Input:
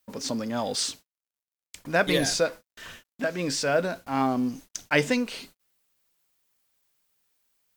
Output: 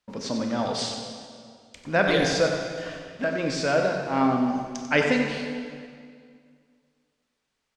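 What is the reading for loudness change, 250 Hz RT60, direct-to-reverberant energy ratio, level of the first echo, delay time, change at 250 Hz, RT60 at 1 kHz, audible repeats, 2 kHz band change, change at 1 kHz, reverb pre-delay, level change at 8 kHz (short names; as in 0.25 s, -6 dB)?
+1.5 dB, 2.4 s, 1.5 dB, -8.0 dB, 93 ms, +3.0 dB, 2.1 s, 1, +2.0 dB, +3.0 dB, 23 ms, -5.0 dB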